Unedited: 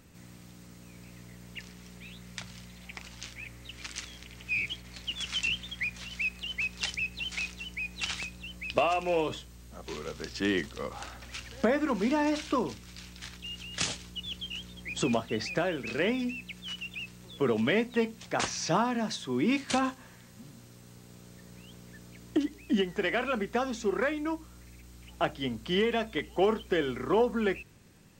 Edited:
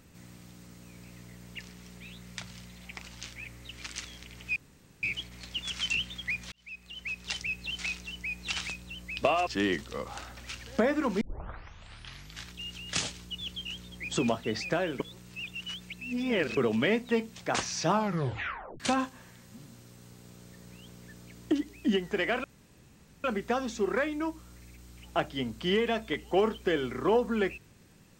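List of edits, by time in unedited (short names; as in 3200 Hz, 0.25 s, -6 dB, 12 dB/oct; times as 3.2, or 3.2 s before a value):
4.56 insert room tone 0.47 s
6.05–7.45 fade in equal-power
9–10.32 cut
12.06 tape start 1.25 s
15.85–17.42 reverse
18.76 tape stop 0.89 s
23.29 insert room tone 0.80 s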